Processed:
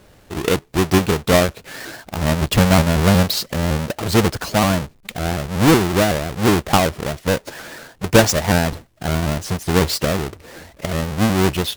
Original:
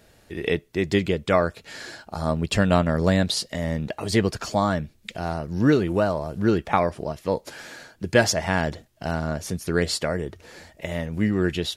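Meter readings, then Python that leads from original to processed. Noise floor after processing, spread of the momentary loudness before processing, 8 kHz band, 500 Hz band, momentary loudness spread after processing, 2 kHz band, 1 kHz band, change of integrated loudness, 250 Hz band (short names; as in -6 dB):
-51 dBFS, 15 LU, +8.5 dB, +4.5 dB, 15 LU, +5.5 dB, +6.0 dB, +6.0 dB, +5.5 dB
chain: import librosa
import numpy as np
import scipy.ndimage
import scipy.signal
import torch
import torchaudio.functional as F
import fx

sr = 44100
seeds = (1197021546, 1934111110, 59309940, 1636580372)

y = fx.halfwave_hold(x, sr)
y = fx.vibrato_shape(y, sr, shape='saw_up', rate_hz=5.4, depth_cents=160.0)
y = y * 10.0 ** (1.5 / 20.0)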